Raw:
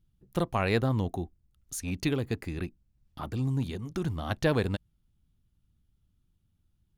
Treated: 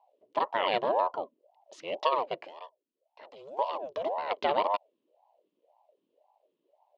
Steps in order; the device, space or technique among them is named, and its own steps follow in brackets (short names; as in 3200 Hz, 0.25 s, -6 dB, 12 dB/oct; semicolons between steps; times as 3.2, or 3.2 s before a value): 2.47–3.59 pre-emphasis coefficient 0.8; voice changer toy (ring modulator with a swept carrier 530 Hz, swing 55%, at 1.9 Hz; speaker cabinet 420–4500 Hz, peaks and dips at 590 Hz +8 dB, 1000 Hz +9 dB, 1500 Hz -6 dB, 2900 Hz +7 dB)